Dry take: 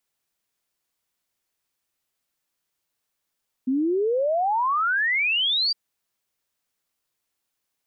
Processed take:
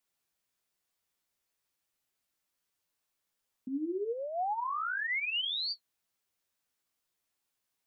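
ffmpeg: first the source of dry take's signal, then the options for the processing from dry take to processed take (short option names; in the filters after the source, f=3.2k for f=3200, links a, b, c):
-f lavfi -i "aevalsrc='0.106*clip(min(t,2.06-t)/0.01,0,1)*sin(2*PI*250*2.06/log(4800/250)*(exp(log(4800/250)*t/2.06)-1))':d=2.06:s=44100"
-af "alimiter=level_in=3.5dB:limit=-24dB:level=0:latency=1:release=17,volume=-3.5dB,flanger=delay=9.5:depth=8:regen=30:speed=1.1:shape=sinusoidal"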